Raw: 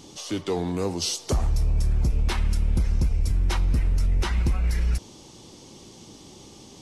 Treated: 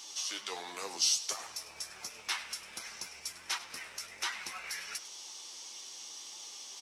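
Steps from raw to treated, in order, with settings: high-pass 1.3 kHz 12 dB/octave; peaking EQ 5.7 kHz +5.5 dB 0.2 oct; in parallel at +1 dB: compression, threshold -42 dBFS, peak gain reduction 18.5 dB; on the sum: flange 1.4 Hz, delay 8.2 ms, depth 5.2 ms, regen +42%; companded quantiser 8-bit; on a send: frequency-shifting echo 100 ms, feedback 37%, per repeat -100 Hz, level -16 dB

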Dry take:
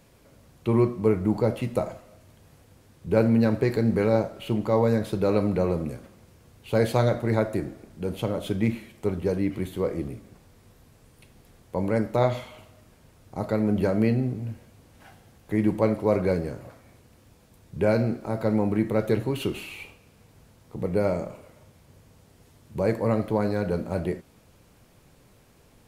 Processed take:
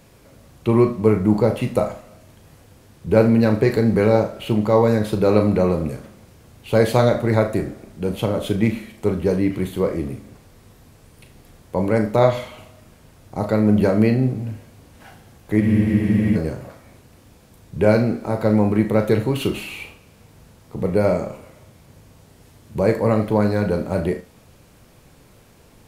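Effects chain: flutter echo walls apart 6.5 m, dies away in 0.25 s; spectral freeze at 15.63 s, 0.72 s; trim +6 dB

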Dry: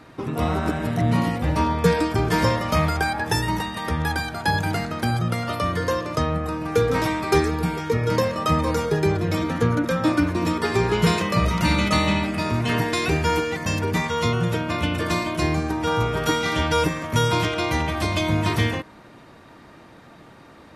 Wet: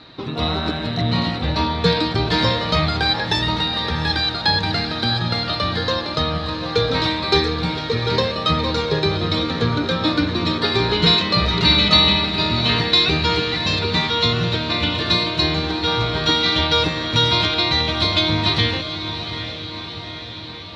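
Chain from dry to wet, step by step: resonant low-pass 4 kHz, resonance Q 12; echo that smears into a reverb 756 ms, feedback 62%, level -10 dB

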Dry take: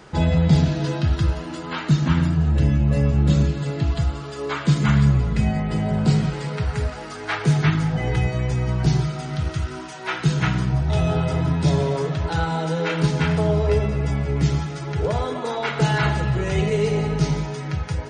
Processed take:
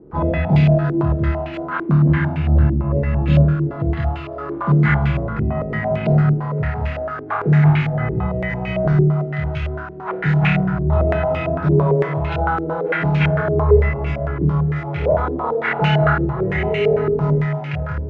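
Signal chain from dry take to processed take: flutter echo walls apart 4.6 m, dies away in 0.67 s; step-sequenced low-pass 8.9 Hz 360–2500 Hz; trim -3 dB

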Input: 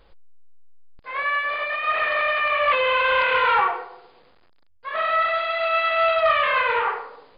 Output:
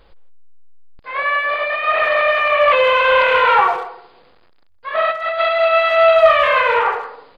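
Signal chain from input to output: dynamic bell 620 Hz, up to +6 dB, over -36 dBFS, Q 1.7; 5.10–5.56 s: compressor with a negative ratio -23 dBFS, ratio -0.5; speakerphone echo 160 ms, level -15 dB; trim +4.5 dB

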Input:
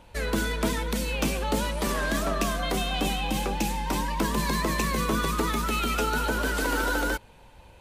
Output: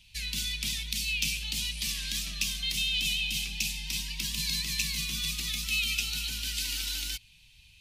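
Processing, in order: FFT filter 150 Hz 0 dB, 500 Hz -29 dB, 1.4 kHz -17 dB, 2.5 kHz +12 dB, 5.2 kHz +15 dB, 7.7 kHz +9 dB; trim -8.5 dB

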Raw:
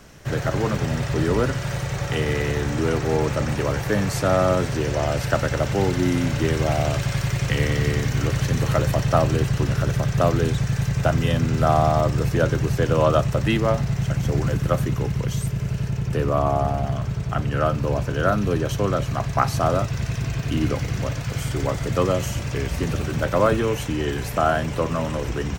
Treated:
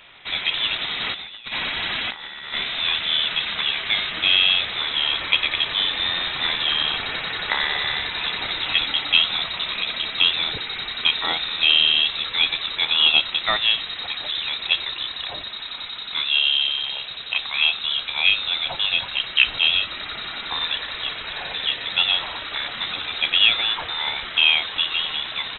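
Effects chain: high-pass 880 Hz 6 dB/octave; 1.01–2.54 s: compressor with a negative ratio -35 dBFS, ratio -0.5; frequency inversion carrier 3.9 kHz; trim +6.5 dB

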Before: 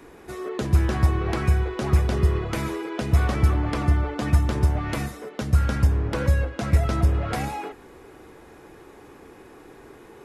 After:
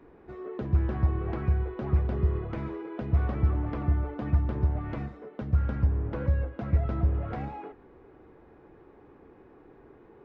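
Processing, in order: tape spacing loss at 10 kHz 44 dB; trim -5 dB

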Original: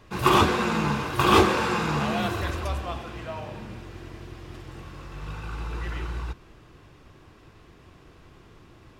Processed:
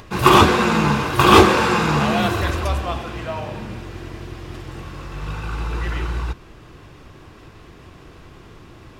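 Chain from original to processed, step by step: upward compressor, threshold -46 dBFS; trim +7.5 dB

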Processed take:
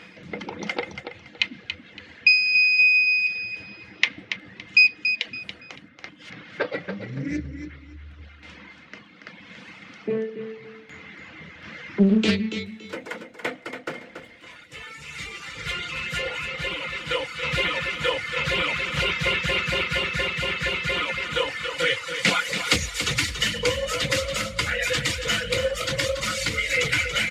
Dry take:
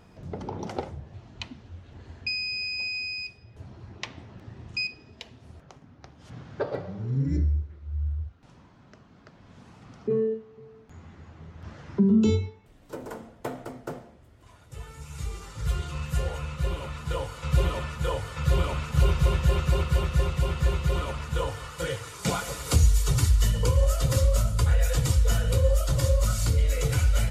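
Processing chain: frequency weighting D; reverb removal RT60 0.91 s; peaking EQ 1.9 kHz +13 dB 1.8 oct; reverse; upward compressor, threshold -35 dBFS; reverse; small resonant body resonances 200/300/490/2100 Hz, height 12 dB, ringing for 65 ms; on a send: feedback delay 282 ms, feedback 25%, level -8.5 dB; on the sum: loudspeaker Doppler distortion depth 0.59 ms; trim -4.5 dB

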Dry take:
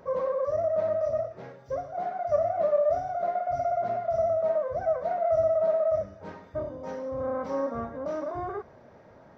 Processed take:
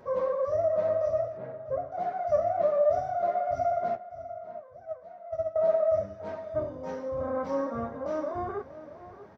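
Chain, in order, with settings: 1.37–1.92 s: Bessel low-pass 1.4 kHz, order 2; 3.95–5.56 s: gate -21 dBFS, range -18 dB; flange 0.63 Hz, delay 8.2 ms, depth 5.1 ms, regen -35%; echo from a far wall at 110 m, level -14 dB; trim +3.5 dB

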